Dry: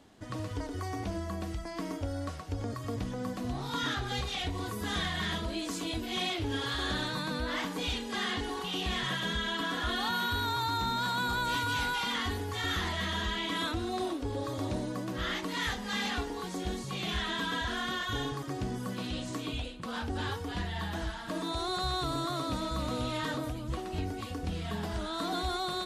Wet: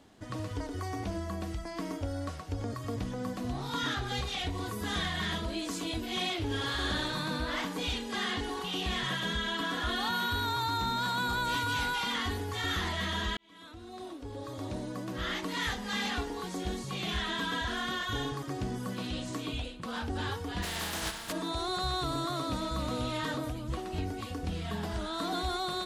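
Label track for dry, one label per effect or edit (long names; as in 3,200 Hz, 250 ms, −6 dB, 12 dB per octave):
6.450000	7.610000	flutter between parallel walls apart 10.2 metres, dies away in 0.47 s
13.370000	15.440000	fade in
20.620000	21.310000	compressing power law on the bin magnitudes exponent 0.41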